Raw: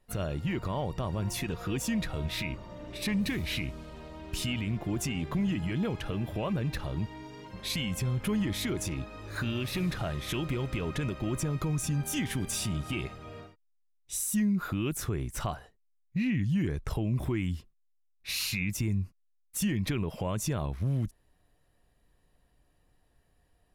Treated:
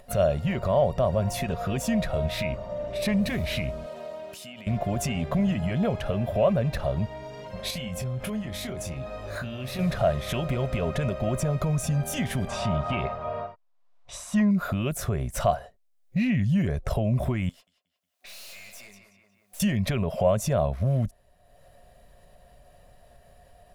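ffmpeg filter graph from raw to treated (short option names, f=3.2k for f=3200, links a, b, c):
-filter_complex "[0:a]asettb=1/sr,asplit=3[a][b][c];[a]atrim=end=3.864[d];[b]atrim=start=3.86:end=4.67,asetpts=PTS-STARTPTS,afade=t=in:d=0.004:c=qsin,afade=t=out:st=0.806:d=0.004:c=qsin,highpass=230,highshelf=f=7.6k:g=6,acompressor=threshold=-44dB:ratio=10:attack=3.2:release=140:knee=1:detection=peak[e];[c]atrim=start=4.666[f];[d][e]acrossfade=d=0.004:c1=hsin:c2=qsin[g];[g][f]acrossfade=d=0.004:c1=qsin:c2=hsin,asettb=1/sr,asplit=3[h][i][j];[h]atrim=end=7.704[k];[i]atrim=start=7.7:end=9.79,asetpts=PTS-STARTPTS,afade=t=in:d=0.004:c=qsin,afade=t=out:st=2.086:d=0.004:c=qsin,acompressor=threshold=-35dB:ratio=5:attack=3.2:release=140:knee=1:detection=peak,asplit=2[l][m];[m]adelay=23,volume=-8.5dB[n];[l][n]amix=inputs=2:normalize=0,atrim=end_sample=92169[o];[j]atrim=start=9.786[p];[k][o]acrossfade=d=0.004:c1=hsin:c2=qsin[q];[q][p]acrossfade=d=0.004:c1=qsin:c2=hsin,asettb=1/sr,asplit=3[r][s][t];[r]atrim=end=12.474[u];[s]atrim=start=12.47:end=14.51,asetpts=PTS-STARTPTS,afade=t=in:d=0.004:c=qsin,afade=t=out:st=2.036:d=0.004:c=qsin,lowpass=4.2k,equalizer=f=1k:t=o:w=0.84:g=14.5[v];[t]atrim=start=14.506[w];[u][v]acrossfade=d=0.004:c1=hsin:c2=qsin[x];[x][w]acrossfade=d=0.004:c1=qsin:c2=hsin,asettb=1/sr,asplit=3[y][z][aa];[y]atrim=end=17.494[ab];[z]atrim=start=17.49:end=19.6,asetpts=PTS-STARTPTS,afade=t=in:d=0.004:c=qsin,afade=t=out:st=2.106:d=0.004:c=qsin,highpass=820,asplit=2[ac][ad];[ad]adelay=180,lowpass=f=3.5k:p=1,volume=-14dB,asplit=2[ae][af];[af]adelay=180,lowpass=f=3.5k:p=1,volume=0.29,asplit=2[ag][ah];[ah]adelay=180,lowpass=f=3.5k:p=1,volume=0.29[ai];[ac][ae][ag][ai]amix=inputs=4:normalize=0,atrim=end_sample=93051,aeval=exprs='(tanh(282*val(0)+0.7)-tanh(0.7))/282':c=same[aj];[aa]atrim=start=19.596[ak];[ab][aj]acrossfade=d=0.004:c1=hsin:c2=qsin[al];[al][ak]acrossfade=d=0.004:c1=qsin:c2=hsin,superequalizer=6b=0.316:8b=3.55,acompressor=mode=upward:threshold=-49dB:ratio=2.5,adynamicequalizer=threshold=0.00355:dfrequency=1800:dqfactor=0.7:tfrequency=1800:tqfactor=0.7:attack=5:release=100:ratio=0.375:range=2:mode=cutabove:tftype=highshelf,volume=5dB"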